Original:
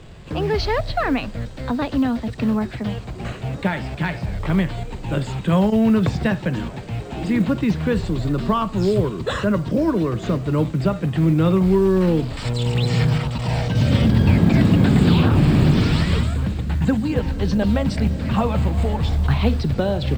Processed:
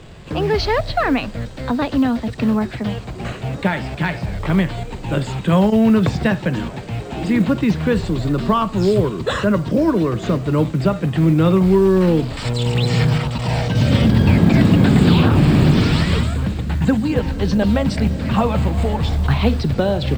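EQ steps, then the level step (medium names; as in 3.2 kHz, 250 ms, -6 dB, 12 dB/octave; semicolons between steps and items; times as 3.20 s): bass shelf 110 Hz -4 dB; +3.5 dB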